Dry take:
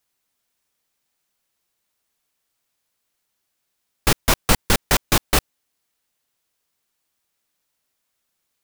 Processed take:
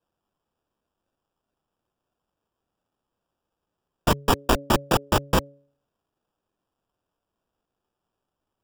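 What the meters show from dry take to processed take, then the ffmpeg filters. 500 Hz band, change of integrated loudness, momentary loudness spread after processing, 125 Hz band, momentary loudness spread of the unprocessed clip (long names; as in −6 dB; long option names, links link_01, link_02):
+1.0 dB, −4.0 dB, 3 LU, −2.0 dB, 3 LU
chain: -af "highpass=frequency=210:width_type=q:width=0.5412,highpass=frequency=210:width_type=q:width=1.307,lowpass=frequency=2600:width_type=q:width=0.5176,lowpass=frequency=2600:width_type=q:width=0.7071,lowpass=frequency=2600:width_type=q:width=1.932,afreqshift=-240,acrusher=samples=21:mix=1:aa=0.000001,bandreject=frequency=141.1:width_type=h:width=4,bandreject=frequency=282.2:width_type=h:width=4,bandreject=frequency=423.3:width_type=h:width=4,bandreject=frequency=564.4:width_type=h:width=4,volume=2dB"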